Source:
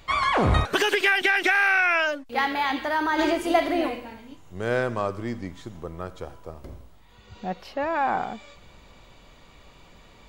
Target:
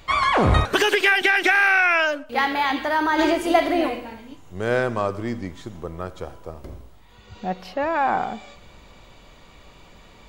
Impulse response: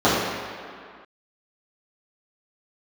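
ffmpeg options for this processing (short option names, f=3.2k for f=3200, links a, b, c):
-filter_complex "[0:a]asplit=2[a][b];[1:a]atrim=start_sample=2205,afade=t=out:st=0.3:d=0.01,atrim=end_sample=13671[c];[b][c]afir=irnorm=-1:irlink=0,volume=-44dB[d];[a][d]amix=inputs=2:normalize=0,volume=3dB"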